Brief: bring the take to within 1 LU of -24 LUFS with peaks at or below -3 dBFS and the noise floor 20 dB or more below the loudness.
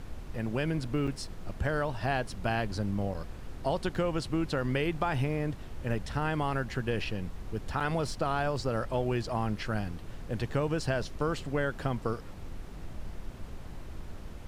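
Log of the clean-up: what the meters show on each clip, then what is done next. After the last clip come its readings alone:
dropouts 3; longest dropout 5.8 ms; noise floor -43 dBFS; noise floor target -53 dBFS; loudness -32.5 LUFS; peak -15.0 dBFS; loudness target -24.0 LUFS
-> interpolate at 1.07/3.14/7.8, 5.8 ms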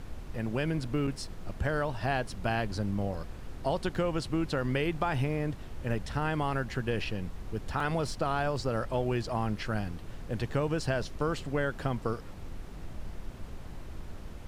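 dropouts 0; noise floor -43 dBFS; noise floor target -53 dBFS
-> noise print and reduce 10 dB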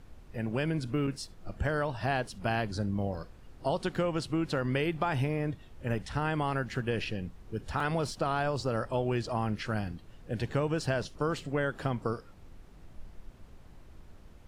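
noise floor -53 dBFS; loudness -32.5 LUFS; peak -15.0 dBFS; loudness target -24.0 LUFS
-> gain +8.5 dB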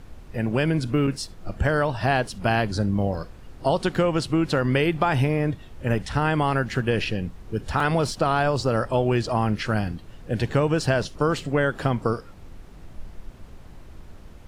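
loudness -24.0 LUFS; peak -6.5 dBFS; noise floor -44 dBFS

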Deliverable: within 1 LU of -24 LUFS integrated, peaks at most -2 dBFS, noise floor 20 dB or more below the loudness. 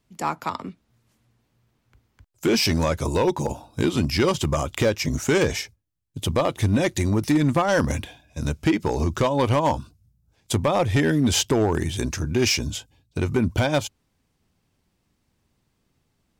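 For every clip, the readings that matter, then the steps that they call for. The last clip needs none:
clipped 0.8%; flat tops at -13.5 dBFS; loudness -23.0 LUFS; peak -13.5 dBFS; loudness target -24.0 LUFS
-> clip repair -13.5 dBFS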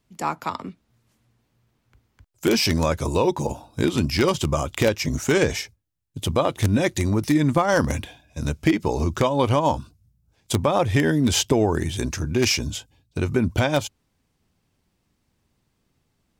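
clipped 0.0%; loudness -22.5 LUFS; peak -4.5 dBFS; loudness target -24.0 LUFS
-> gain -1.5 dB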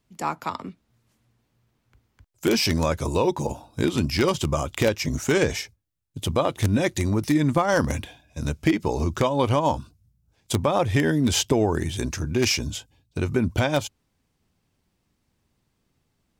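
loudness -24.0 LUFS; peak -6.0 dBFS; noise floor -73 dBFS

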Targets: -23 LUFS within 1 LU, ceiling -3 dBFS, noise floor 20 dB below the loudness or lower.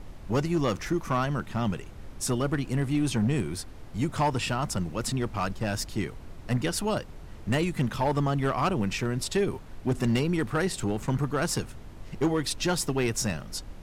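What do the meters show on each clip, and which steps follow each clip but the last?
clipped 1.0%; flat tops at -19.0 dBFS; noise floor -44 dBFS; noise floor target -49 dBFS; loudness -28.5 LUFS; peak -19.0 dBFS; loudness target -23.0 LUFS
-> clip repair -19 dBFS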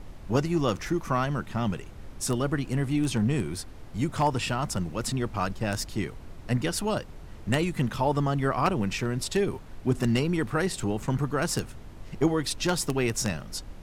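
clipped 0.0%; noise floor -44 dBFS; noise floor target -48 dBFS
-> noise print and reduce 6 dB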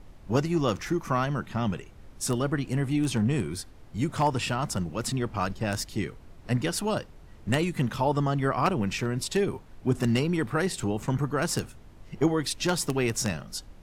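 noise floor -50 dBFS; loudness -28.0 LUFS; peak -10.0 dBFS; loudness target -23.0 LUFS
-> gain +5 dB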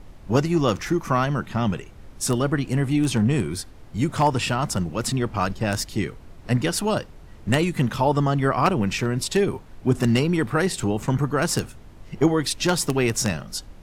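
loudness -23.0 LUFS; peak -5.0 dBFS; noise floor -45 dBFS

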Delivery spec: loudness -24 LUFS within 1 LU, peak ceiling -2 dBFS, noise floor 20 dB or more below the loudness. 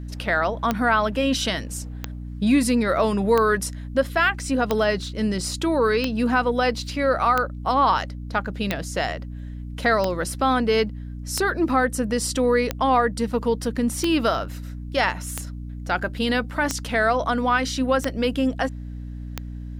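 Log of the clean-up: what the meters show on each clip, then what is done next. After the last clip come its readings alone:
clicks 15; hum 60 Hz; harmonics up to 300 Hz; hum level -31 dBFS; loudness -22.5 LUFS; peak -7.0 dBFS; loudness target -24.0 LUFS
-> de-click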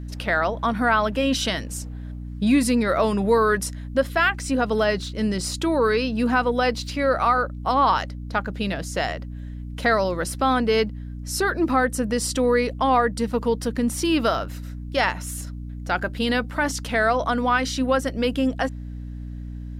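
clicks 0; hum 60 Hz; harmonics up to 300 Hz; hum level -31 dBFS
-> notches 60/120/180/240/300 Hz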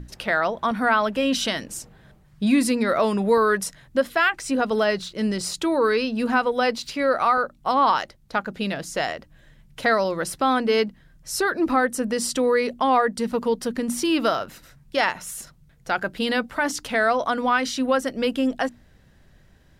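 hum none; loudness -23.0 LUFS; peak -7.0 dBFS; loudness target -24.0 LUFS
-> gain -1 dB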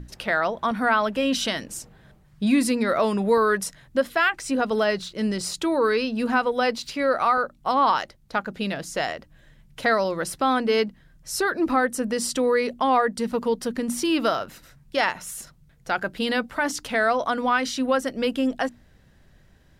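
loudness -24.0 LUFS; peak -8.0 dBFS; noise floor -56 dBFS

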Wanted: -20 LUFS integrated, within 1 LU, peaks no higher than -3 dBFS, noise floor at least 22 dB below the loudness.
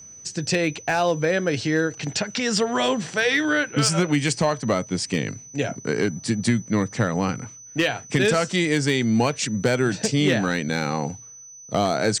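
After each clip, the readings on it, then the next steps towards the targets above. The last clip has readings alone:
clipped 0.2%; flat tops at -11.5 dBFS; steady tone 6000 Hz; tone level -41 dBFS; loudness -23.0 LUFS; peak -11.5 dBFS; loudness target -20.0 LUFS
-> clip repair -11.5 dBFS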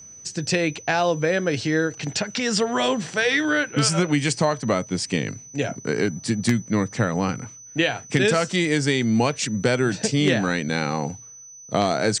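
clipped 0.0%; steady tone 6000 Hz; tone level -41 dBFS
-> notch 6000 Hz, Q 30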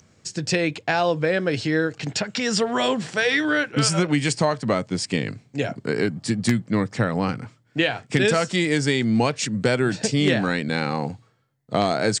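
steady tone none; loudness -22.5 LUFS; peak -3.0 dBFS; loudness target -20.0 LUFS
-> gain +2.5 dB; limiter -3 dBFS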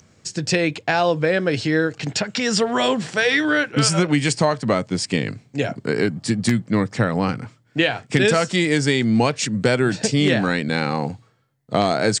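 loudness -20.5 LUFS; peak -3.0 dBFS; noise floor -58 dBFS

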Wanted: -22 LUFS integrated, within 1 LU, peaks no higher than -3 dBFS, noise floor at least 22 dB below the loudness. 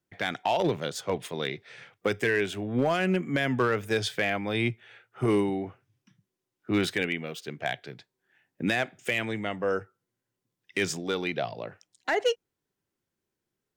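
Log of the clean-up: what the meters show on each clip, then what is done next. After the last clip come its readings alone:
clipped 0.3%; flat tops at -17.5 dBFS; loudness -29.0 LUFS; peak -17.5 dBFS; loudness target -22.0 LUFS
-> clip repair -17.5 dBFS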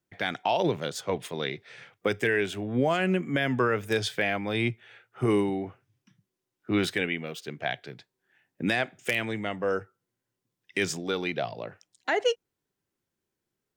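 clipped 0.0%; loudness -29.0 LUFS; peak -8.5 dBFS; loudness target -22.0 LUFS
-> gain +7 dB; limiter -3 dBFS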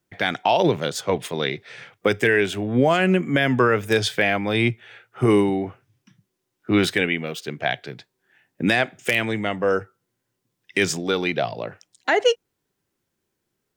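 loudness -22.0 LUFS; peak -3.0 dBFS; noise floor -78 dBFS

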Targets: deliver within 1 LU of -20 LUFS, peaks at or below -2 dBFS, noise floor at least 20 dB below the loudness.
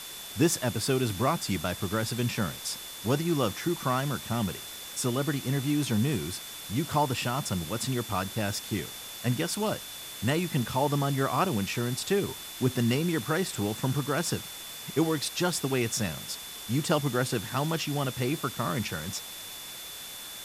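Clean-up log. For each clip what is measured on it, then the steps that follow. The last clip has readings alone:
steady tone 3500 Hz; tone level -44 dBFS; noise floor -42 dBFS; noise floor target -50 dBFS; loudness -29.5 LUFS; peak -12.5 dBFS; loudness target -20.0 LUFS
-> notch 3500 Hz, Q 30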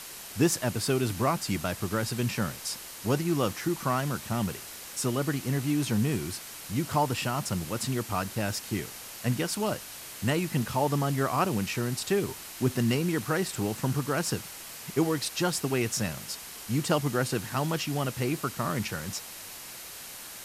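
steady tone none; noise floor -43 dBFS; noise floor target -50 dBFS
-> noise print and reduce 7 dB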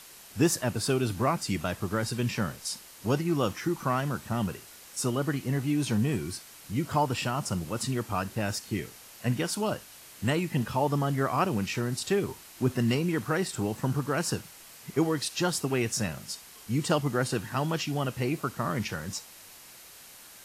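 noise floor -50 dBFS; loudness -30.0 LUFS; peak -12.5 dBFS; loudness target -20.0 LUFS
-> gain +10 dB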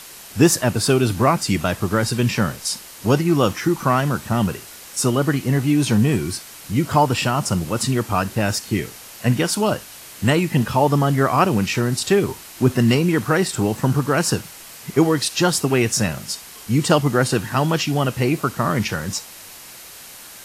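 loudness -20.0 LUFS; peak -2.5 dBFS; noise floor -40 dBFS

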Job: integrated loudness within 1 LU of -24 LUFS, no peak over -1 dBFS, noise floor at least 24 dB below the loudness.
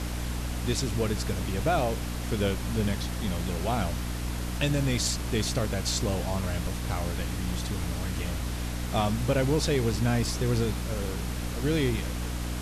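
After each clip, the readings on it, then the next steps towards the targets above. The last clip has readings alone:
hum 60 Hz; harmonics up to 300 Hz; hum level -30 dBFS; noise floor -33 dBFS; noise floor target -53 dBFS; loudness -29.0 LUFS; peak -13.0 dBFS; loudness target -24.0 LUFS
-> de-hum 60 Hz, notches 5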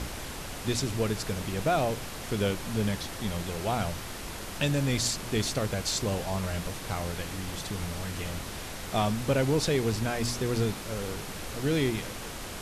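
hum none; noise floor -39 dBFS; noise floor target -55 dBFS
-> noise print and reduce 16 dB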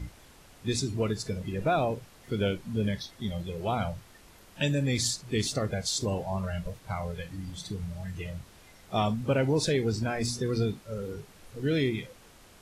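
noise floor -55 dBFS; loudness -31.0 LUFS; peak -15.0 dBFS; loudness target -24.0 LUFS
-> gain +7 dB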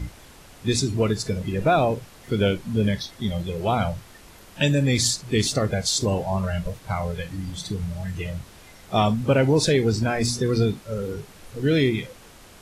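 loudness -24.0 LUFS; peak -8.0 dBFS; noise floor -48 dBFS

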